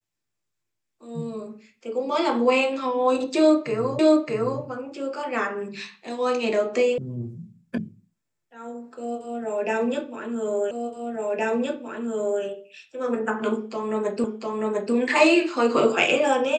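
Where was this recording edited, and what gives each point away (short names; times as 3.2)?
3.99 repeat of the last 0.62 s
6.98 sound cut off
7.78 sound cut off
10.71 repeat of the last 1.72 s
14.24 repeat of the last 0.7 s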